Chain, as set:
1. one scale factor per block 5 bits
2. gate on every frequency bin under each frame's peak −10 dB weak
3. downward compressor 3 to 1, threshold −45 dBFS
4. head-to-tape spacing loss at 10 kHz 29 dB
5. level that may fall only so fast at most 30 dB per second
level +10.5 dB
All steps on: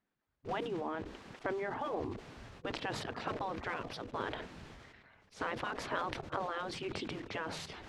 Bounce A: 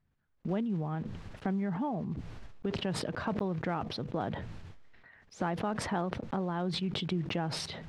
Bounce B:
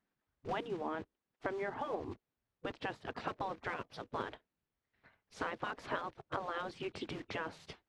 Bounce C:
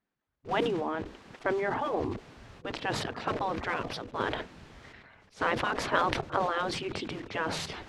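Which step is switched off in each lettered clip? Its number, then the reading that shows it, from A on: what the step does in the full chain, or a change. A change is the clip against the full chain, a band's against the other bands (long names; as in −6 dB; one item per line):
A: 2, 125 Hz band +8.5 dB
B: 5, change in momentary loudness spread −5 LU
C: 3, average gain reduction 5.5 dB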